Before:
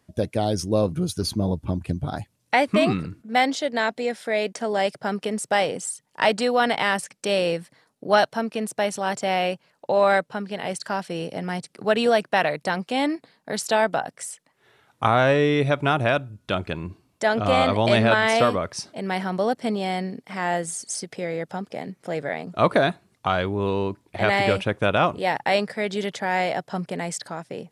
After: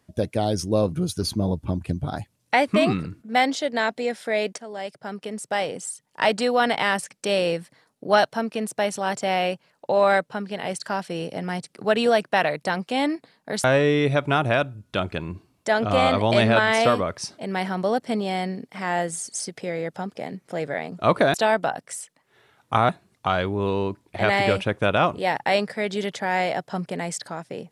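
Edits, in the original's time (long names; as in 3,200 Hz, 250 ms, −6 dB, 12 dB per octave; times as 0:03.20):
0:04.58–0:06.45: fade in, from −13 dB
0:13.64–0:15.19: move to 0:22.89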